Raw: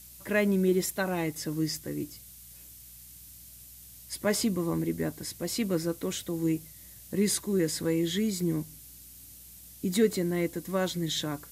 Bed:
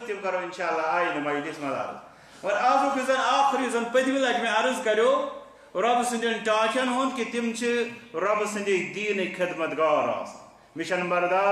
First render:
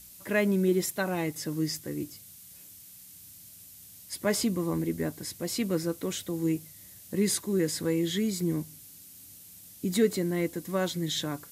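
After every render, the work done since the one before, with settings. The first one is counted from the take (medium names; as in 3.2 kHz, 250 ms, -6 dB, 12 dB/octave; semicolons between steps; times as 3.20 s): de-hum 60 Hz, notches 2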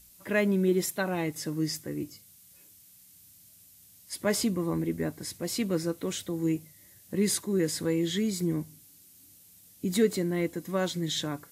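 noise print and reduce 6 dB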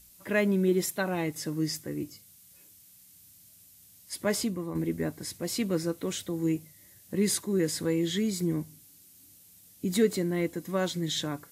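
4.20–4.75 s: fade out, to -7 dB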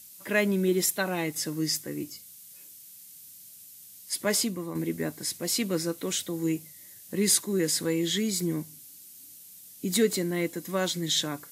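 high-pass 130 Hz 12 dB/octave; treble shelf 2.2 kHz +7.5 dB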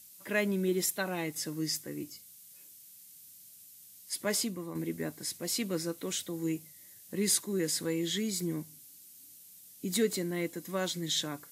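trim -5 dB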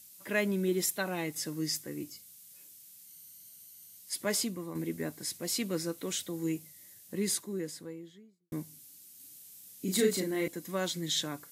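3.07–3.97 s: rippled EQ curve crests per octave 1.9, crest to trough 7 dB; 6.87–8.52 s: studio fade out; 9.16–10.48 s: doubling 37 ms -3 dB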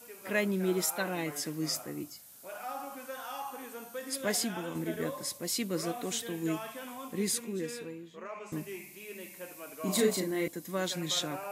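add bed -18.5 dB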